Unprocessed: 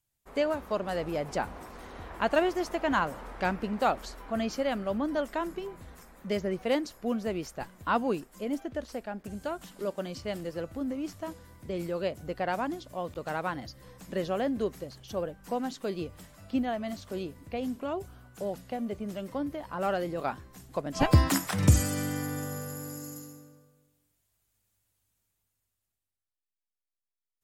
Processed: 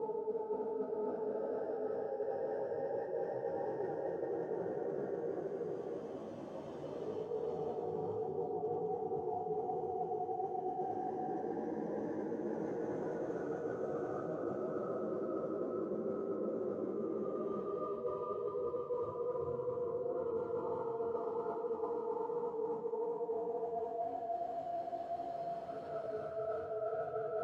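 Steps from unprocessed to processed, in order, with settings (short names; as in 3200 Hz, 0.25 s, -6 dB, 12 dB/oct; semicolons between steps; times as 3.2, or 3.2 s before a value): spectrum mirrored in octaves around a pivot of 520 Hz; added noise pink -54 dBFS; step gate "x...x.xx.xxx" 139 bpm; Paulstretch 4.7×, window 1.00 s, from 0.46; chorus voices 4, 1.3 Hz, delay 16 ms, depth 3.3 ms; band-pass 530 Hz, Q 1.8; reverse; compressor 12:1, threshold -48 dBFS, peak gain reduction 18.5 dB; reverse; gain +13 dB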